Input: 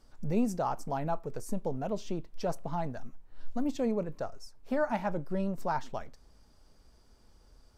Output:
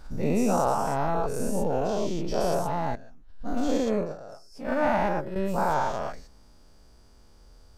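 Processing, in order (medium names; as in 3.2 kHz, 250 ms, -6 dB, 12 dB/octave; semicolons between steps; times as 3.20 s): every event in the spectrogram widened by 240 ms; 2.95–5.36 s: gate -24 dBFS, range -14 dB; swell ahead of each attack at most 130 dB/s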